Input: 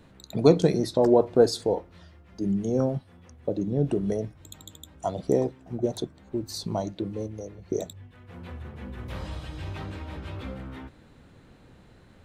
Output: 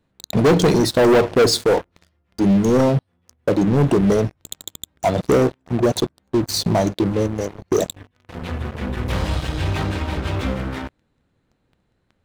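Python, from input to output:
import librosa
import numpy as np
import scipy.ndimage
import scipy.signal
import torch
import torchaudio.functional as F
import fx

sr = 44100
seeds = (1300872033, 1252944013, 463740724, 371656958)

y = fx.leveller(x, sr, passes=5)
y = y * librosa.db_to_amplitude(-4.5)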